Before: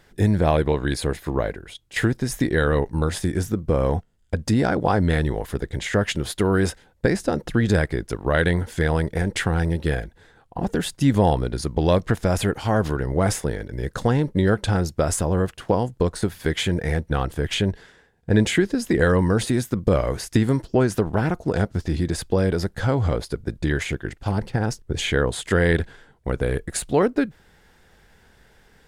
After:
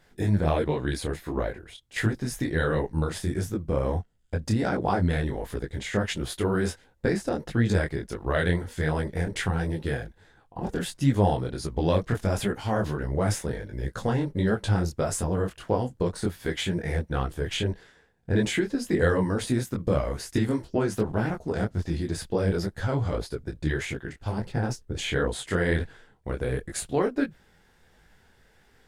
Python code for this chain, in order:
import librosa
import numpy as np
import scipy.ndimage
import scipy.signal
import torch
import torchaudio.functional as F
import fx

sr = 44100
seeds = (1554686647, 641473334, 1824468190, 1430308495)

y = fx.detune_double(x, sr, cents=50)
y = F.gain(torch.from_numpy(y), -1.5).numpy()